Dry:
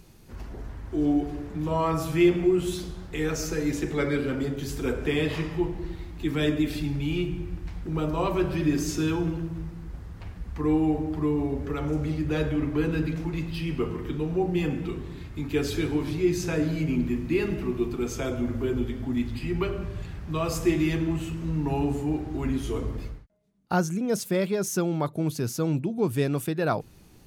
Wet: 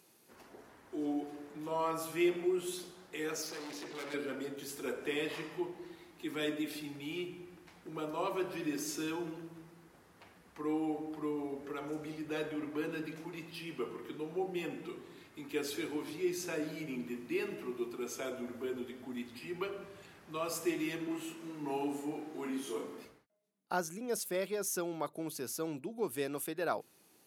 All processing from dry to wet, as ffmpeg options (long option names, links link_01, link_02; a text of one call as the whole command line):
ffmpeg -i in.wav -filter_complex "[0:a]asettb=1/sr,asplit=3[link_01][link_02][link_03];[link_01]atrim=end=3.424[link_04];[link_02]atrim=start=3.42:end=4.14,asetpts=PTS-STARTPTS,afade=type=in:duration=0.004:curve=qsin,afade=type=out:start_time=0.716:duration=0.004:curve=qsin,lowpass=frequency=4700:width_type=q:width=3.1,volume=31.5dB,asoftclip=hard,volume=-31.5dB[link_05];[link_03]atrim=start=4.136[link_06];[link_04][link_05]acrossfade=duration=0.004:curve1=hsin:curve2=qsin[link_07];[link_07][link_06]acrossfade=duration=0.004:curve1=qsin:curve2=hsin,asettb=1/sr,asplit=3[link_08][link_09][link_10];[link_08]atrim=end=21.074[link_11];[link_09]atrim=start=21.07:end=23.05,asetpts=PTS-STARTPTS,afade=type=in:duration=0.004:curve=qsin,afade=type=out:start_time=1.976:duration=0.004:curve=qsin,highpass=frequency=140:width=0.5412,highpass=frequency=140:width=1.3066,asplit=2[link_12][link_13];[link_13]adelay=34,volume=-2.5dB[link_14];[link_12][link_14]amix=inputs=2:normalize=0,atrim=end_sample=87318[link_15];[link_10]atrim=start=23.046[link_16];[link_11][link_15]acrossfade=duration=0.004:curve1=hsin:curve2=qsin[link_17];[link_17][link_16]acrossfade=duration=0.004:curve1=qsin:curve2=hsin,highpass=350,equalizer=frequency=11000:width=1.4:gain=7,volume=-7.5dB" out.wav